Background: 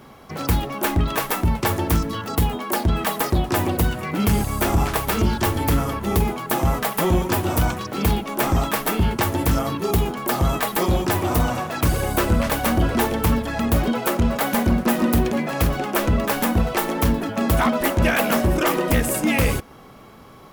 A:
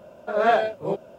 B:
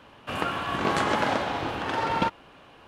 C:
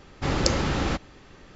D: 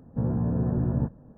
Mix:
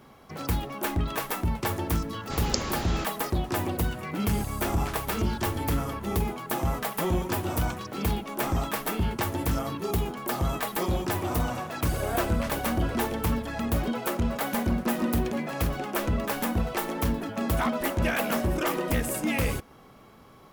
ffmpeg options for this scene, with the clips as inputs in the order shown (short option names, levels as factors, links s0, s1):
-filter_complex "[0:a]volume=0.422[s0];[3:a]highshelf=f=4400:g=9.5,atrim=end=1.55,asetpts=PTS-STARTPTS,volume=0.376,afade=t=in:d=0.004:c=hsin,afade=t=out:st=1.546:d=0.004:c=hsin,adelay=2080[s1];[1:a]atrim=end=1.18,asetpts=PTS-STARTPTS,volume=0.2,afade=t=in:d=0.004:c=hsin,afade=t=out:st=1.176:d=0.004:c=hsin,adelay=11660[s2];[s0][s1][s2]amix=inputs=3:normalize=0"